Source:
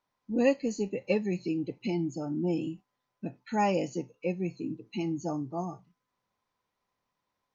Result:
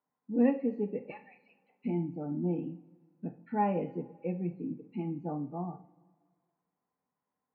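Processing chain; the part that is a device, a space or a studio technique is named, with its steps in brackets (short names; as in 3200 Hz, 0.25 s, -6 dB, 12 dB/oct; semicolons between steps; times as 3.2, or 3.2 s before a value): 1.1–1.84 steep high-pass 770 Hz 48 dB/oct; dynamic EQ 2400 Hz, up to +3 dB, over -45 dBFS, Q 1.1; bass cabinet (speaker cabinet 86–2000 Hz, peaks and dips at 160 Hz +8 dB, 250 Hz +9 dB, 460 Hz +5 dB, 810 Hz +5 dB); two-slope reverb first 0.41 s, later 1.8 s, from -19 dB, DRR 7 dB; gain -8 dB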